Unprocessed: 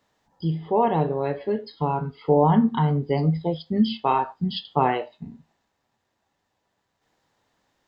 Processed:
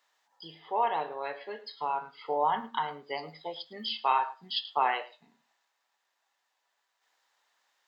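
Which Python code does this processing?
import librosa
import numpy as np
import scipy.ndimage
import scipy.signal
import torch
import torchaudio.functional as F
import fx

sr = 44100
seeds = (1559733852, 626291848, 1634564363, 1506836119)

y = scipy.signal.sosfilt(scipy.signal.butter(2, 1000.0, 'highpass', fs=sr, output='sos'), x)
y = y + 10.0 ** (-19.5 / 20.0) * np.pad(y, (int(108 * sr / 1000.0), 0))[:len(y)]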